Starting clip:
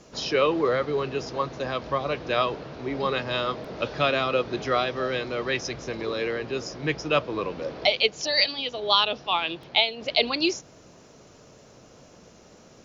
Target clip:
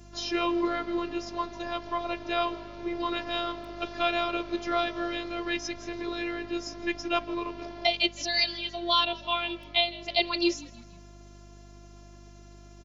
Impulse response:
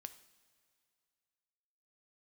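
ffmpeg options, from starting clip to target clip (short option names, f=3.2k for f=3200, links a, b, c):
-filter_complex "[0:a]afftfilt=real='hypot(re,im)*cos(PI*b)':imag='0':win_size=512:overlap=0.75,asplit=4[a][b][c][d];[b]adelay=161,afreqshift=-55,volume=-21dB[e];[c]adelay=322,afreqshift=-110,volume=-27.7dB[f];[d]adelay=483,afreqshift=-165,volume=-34.5dB[g];[a][e][f][g]amix=inputs=4:normalize=0,aeval=exprs='val(0)+0.00355*(sin(2*PI*50*n/s)+sin(2*PI*2*50*n/s)/2+sin(2*PI*3*50*n/s)/3+sin(2*PI*4*50*n/s)/4+sin(2*PI*5*50*n/s)/5)':c=same"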